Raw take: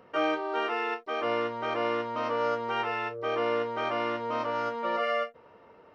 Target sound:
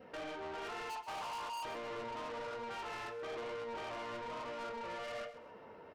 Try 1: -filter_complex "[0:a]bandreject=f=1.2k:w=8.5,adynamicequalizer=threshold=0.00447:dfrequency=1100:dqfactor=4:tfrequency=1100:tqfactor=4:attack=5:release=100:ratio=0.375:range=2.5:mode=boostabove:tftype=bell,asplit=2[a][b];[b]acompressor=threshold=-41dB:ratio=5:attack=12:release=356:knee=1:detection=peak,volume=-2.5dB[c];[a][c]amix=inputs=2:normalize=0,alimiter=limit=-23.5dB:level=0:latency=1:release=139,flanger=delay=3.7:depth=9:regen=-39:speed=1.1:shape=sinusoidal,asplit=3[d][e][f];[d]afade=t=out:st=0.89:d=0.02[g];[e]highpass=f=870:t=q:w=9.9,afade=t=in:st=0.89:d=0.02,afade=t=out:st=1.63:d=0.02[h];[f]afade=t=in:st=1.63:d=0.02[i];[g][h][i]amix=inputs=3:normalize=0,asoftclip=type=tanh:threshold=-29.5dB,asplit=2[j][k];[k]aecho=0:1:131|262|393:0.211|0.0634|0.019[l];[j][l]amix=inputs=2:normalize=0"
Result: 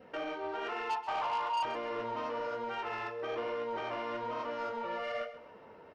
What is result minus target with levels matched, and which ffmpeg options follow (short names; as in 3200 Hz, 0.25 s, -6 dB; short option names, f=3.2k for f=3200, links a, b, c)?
soft clip: distortion -6 dB
-filter_complex "[0:a]bandreject=f=1.2k:w=8.5,adynamicequalizer=threshold=0.00447:dfrequency=1100:dqfactor=4:tfrequency=1100:tqfactor=4:attack=5:release=100:ratio=0.375:range=2.5:mode=boostabove:tftype=bell,asplit=2[a][b];[b]acompressor=threshold=-41dB:ratio=5:attack=12:release=356:knee=1:detection=peak,volume=-2.5dB[c];[a][c]amix=inputs=2:normalize=0,alimiter=limit=-23.5dB:level=0:latency=1:release=139,flanger=delay=3.7:depth=9:regen=-39:speed=1.1:shape=sinusoidal,asplit=3[d][e][f];[d]afade=t=out:st=0.89:d=0.02[g];[e]highpass=f=870:t=q:w=9.9,afade=t=in:st=0.89:d=0.02,afade=t=out:st=1.63:d=0.02[h];[f]afade=t=in:st=1.63:d=0.02[i];[g][h][i]amix=inputs=3:normalize=0,asoftclip=type=tanh:threshold=-41dB,asplit=2[j][k];[k]aecho=0:1:131|262|393:0.211|0.0634|0.019[l];[j][l]amix=inputs=2:normalize=0"